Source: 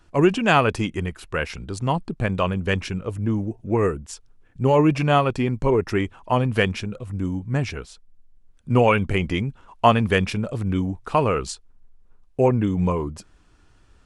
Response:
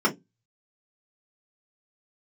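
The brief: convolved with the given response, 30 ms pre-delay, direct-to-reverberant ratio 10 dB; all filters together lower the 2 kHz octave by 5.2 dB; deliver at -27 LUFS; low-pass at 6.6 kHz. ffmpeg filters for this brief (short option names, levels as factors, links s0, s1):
-filter_complex "[0:a]lowpass=6600,equalizer=f=2000:t=o:g=-7,asplit=2[s0][s1];[1:a]atrim=start_sample=2205,adelay=30[s2];[s1][s2]afir=irnorm=-1:irlink=0,volume=0.0562[s3];[s0][s3]amix=inputs=2:normalize=0,volume=0.596"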